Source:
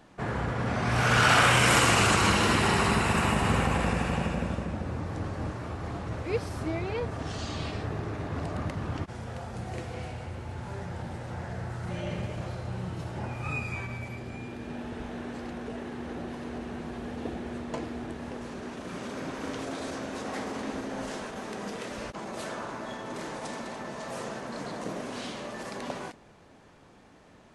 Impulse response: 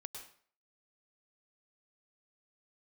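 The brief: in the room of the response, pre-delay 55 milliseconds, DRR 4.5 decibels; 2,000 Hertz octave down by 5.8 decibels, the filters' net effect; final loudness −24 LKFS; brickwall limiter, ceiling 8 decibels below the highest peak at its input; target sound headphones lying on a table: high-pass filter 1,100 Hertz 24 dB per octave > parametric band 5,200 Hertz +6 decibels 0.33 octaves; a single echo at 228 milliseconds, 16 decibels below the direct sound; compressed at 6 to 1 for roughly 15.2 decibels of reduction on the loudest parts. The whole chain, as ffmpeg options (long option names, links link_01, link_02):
-filter_complex "[0:a]equalizer=frequency=2000:width_type=o:gain=-8,acompressor=threshold=-37dB:ratio=6,alimiter=level_in=9.5dB:limit=-24dB:level=0:latency=1,volume=-9.5dB,aecho=1:1:228:0.158,asplit=2[link_01][link_02];[1:a]atrim=start_sample=2205,adelay=55[link_03];[link_02][link_03]afir=irnorm=-1:irlink=0,volume=-0.5dB[link_04];[link_01][link_04]amix=inputs=2:normalize=0,highpass=frequency=1100:width=0.5412,highpass=frequency=1100:width=1.3066,equalizer=frequency=5200:width_type=o:width=0.33:gain=6,volume=25dB"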